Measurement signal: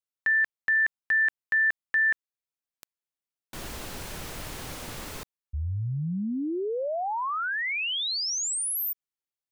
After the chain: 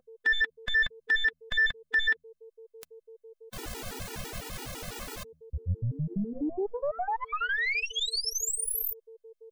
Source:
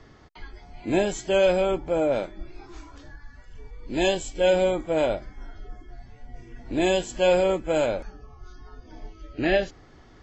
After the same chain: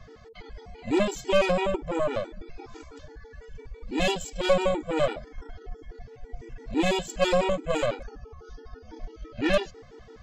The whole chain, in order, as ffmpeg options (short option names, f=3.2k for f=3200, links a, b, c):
-filter_complex "[0:a]aeval=exprs='val(0)+0.00355*sin(2*PI*450*n/s)':c=same,asplit=2[a][b];[b]acompressor=threshold=-35dB:ratio=12:attack=0.89:release=225:knee=6:detection=peak,volume=-1.5dB[c];[a][c]amix=inputs=2:normalize=0,bandreject=f=80.55:t=h:w=4,bandreject=f=161.1:t=h:w=4,bandreject=f=241.65:t=h:w=4,aeval=exprs='0.398*(cos(1*acos(clip(val(0)/0.398,-1,1)))-cos(1*PI/2))+0.0708*(cos(6*acos(clip(val(0)/0.398,-1,1)))-cos(6*PI/2))+0.00891*(cos(7*acos(clip(val(0)/0.398,-1,1)))-cos(7*PI/2))+0.0178*(cos(8*acos(clip(val(0)/0.398,-1,1)))-cos(8*PI/2))':c=same,afftfilt=real='re*gt(sin(2*PI*6*pts/sr)*(1-2*mod(floor(b*sr/1024/250),2)),0)':imag='im*gt(sin(2*PI*6*pts/sr)*(1-2*mod(floor(b*sr/1024/250),2)),0)':win_size=1024:overlap=0.75"